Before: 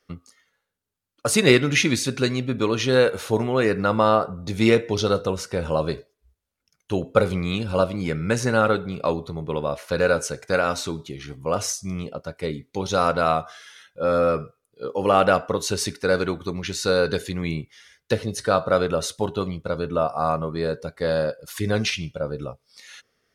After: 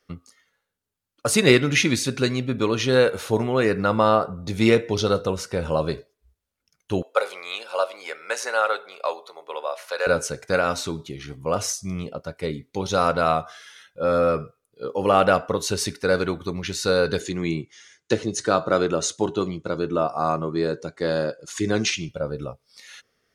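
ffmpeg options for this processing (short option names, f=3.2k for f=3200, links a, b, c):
-filter_complex "[0:a]asettb=1/sr,asplit=3[a][b][c];[a]atrim=end=7.024[d];[b]atrim=start=7.02:end=10.07,asetpts=PTS-STARTPTS,afade=t=in:d=0.004:c=qsin,afade=t=out:st=3.046:d=0.004:c=qsin,highpass=f=560:w=0.5412,highpass=f=560:w=1.3066[e];[c]atrim=start=10.066[f];[d][e]acrossfade=d=0.004:c1=hsin:c2=qsin[g];[g][f]acrossfade=d=0.004:c1=qsin:c2=hsin,asettb=1/sr,asplit=3[h][i][j];[h]atrim=end=17.204[k];[i]atrim=start=17.2:end=22.09,asetpts=PTS-STARTPTS,afade=t=in:d=0.004:c=qsin,afade=t=out:st=4.886:d=0.004:c=qsin,highpass=120,equalizer=f=340:t=q:w=4:g=9,equalizer=f=530:t=q:w=4:g=-3,equalizer=f=6.7k:t=q:w=4:g=9,lowpass=f=9.2k:w=0.5412,lowpass=f=9.2k:w=1.3066[l];[j]atrim=start=22.086[m];[k][l]acrossfade=d=0.004:c1=hsin:c2=qsin[n];[n][m]acrossfade=d=0.004:c1=qsin:c2=hsin"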